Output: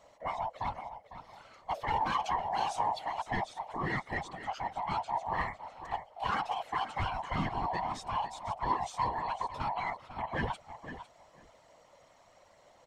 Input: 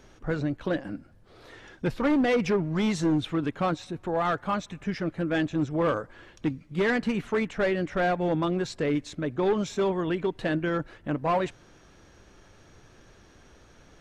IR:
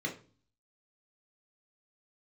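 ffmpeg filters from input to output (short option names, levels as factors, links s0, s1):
-af "afftfilt=real='real(if(lt(b,1008),b+24*(1-2*mod(floor(b/24),2)),b),0)':imag='imag(if(lt(b,1008),b+24*(1-2*mod(floor(b/24),2)),b),0)':win_size=2048:overlap=0.75,asetrate=48000,aresample=44100,aecho=1:1:503|1006:0.251|0.0402,afftfilt=real='hypot(re,im)*cos(2*PI*random(0))':imag='hypot(re,im)*sin(2*PI*random(1))':win_size=512:overlap=0.75,volume=0.841"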